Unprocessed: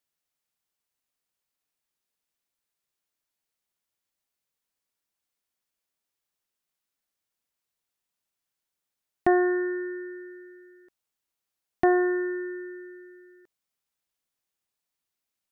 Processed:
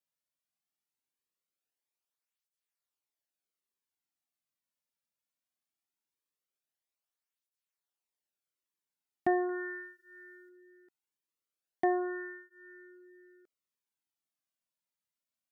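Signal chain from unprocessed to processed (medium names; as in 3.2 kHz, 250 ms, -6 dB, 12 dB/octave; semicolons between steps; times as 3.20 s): 9.49–10.49 s: treble shelf 2 kHz +8 dB; cancelling through-zero flanger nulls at 0.2 Hz, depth 2.8 ms; trim -5.5 dB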